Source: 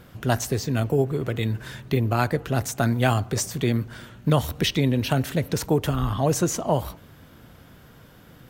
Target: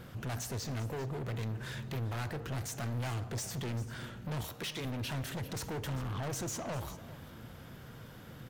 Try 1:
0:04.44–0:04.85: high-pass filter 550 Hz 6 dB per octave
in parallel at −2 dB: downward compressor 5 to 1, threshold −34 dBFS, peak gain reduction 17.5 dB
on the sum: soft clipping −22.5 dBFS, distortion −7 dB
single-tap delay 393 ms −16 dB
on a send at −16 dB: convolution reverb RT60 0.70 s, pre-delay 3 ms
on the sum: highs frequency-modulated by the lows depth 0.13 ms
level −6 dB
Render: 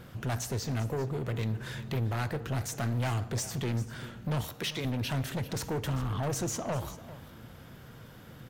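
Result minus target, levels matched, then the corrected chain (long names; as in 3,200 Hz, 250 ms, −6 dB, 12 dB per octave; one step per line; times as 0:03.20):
soft clipping: distortion −4 dB
0:04.44–0:04.85: high-pass filter 550 Hz 6 dB per octave
in parallel at −2 dB: downward compressor 5 to 1, threshold −34 dBFS, peak gain reduction 17.5 dB
on the sum: soft clipping −30 dBFS, distortion −3 dB
single-tap delay 393 ms −16 dB
on a send at −16 dB: convolution reverb RT60 0.70 s, pre-delay 3 ms
on the sum: highs frequency-modulated by the lows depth 0.13 ms
level −6 dB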